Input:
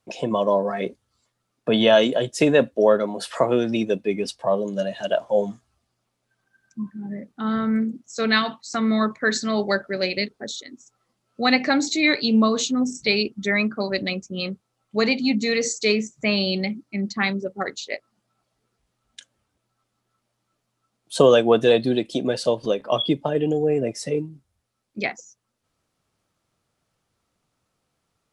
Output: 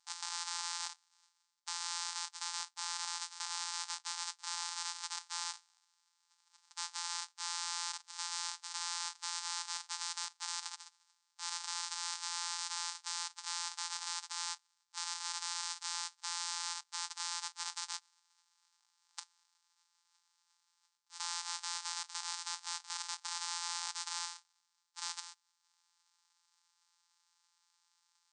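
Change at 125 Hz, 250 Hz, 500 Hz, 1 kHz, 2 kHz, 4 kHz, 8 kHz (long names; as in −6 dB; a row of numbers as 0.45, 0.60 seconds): below −40 dB, below −40 dB, below −40 dB, −14.5 dB, −19.5 dB, −10.5 dB, −2.0 dB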